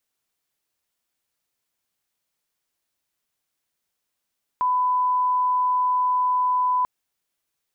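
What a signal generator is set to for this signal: line-up tone -18 dBFS 2.24 s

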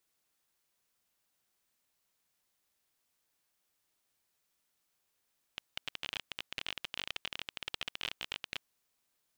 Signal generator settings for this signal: random clicks 28/s -20 dBFS 3.04 s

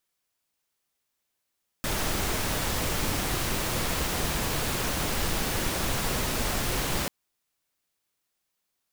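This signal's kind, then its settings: noise pink, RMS -28 dBFS 5.24 s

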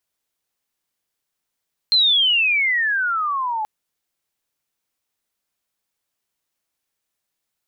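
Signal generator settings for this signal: chirp logarithmic 4200 Hz -> 840 Hz -12 dBFS -> -21 dBFS 1.73 s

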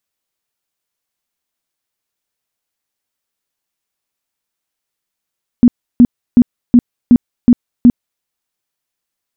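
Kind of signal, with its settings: tone bursts 242 Hz, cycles 12, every 0.37 s, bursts 7, -1.5 dBFS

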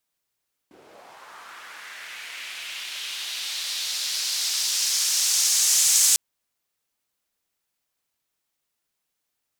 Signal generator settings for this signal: swept filtered noise white, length 5.45 s bandpass, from 300 Hz, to 7000 Hz, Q 1.9, linear, gain ramp +23 dB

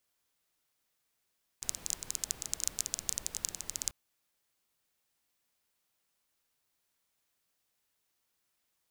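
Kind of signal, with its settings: rain from filtered ticks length 2.29 s, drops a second 16, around 6800 Hz, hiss -13 dB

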